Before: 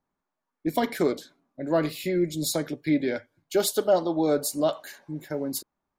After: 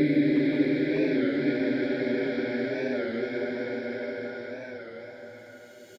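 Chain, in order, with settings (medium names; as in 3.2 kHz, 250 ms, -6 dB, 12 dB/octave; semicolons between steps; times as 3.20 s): Paulstretch 16×, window 0.50 s, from 2.98 s; speakerphone echo 360 ms, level -11 dB; warped record 33 1/3 rpm, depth 100 cents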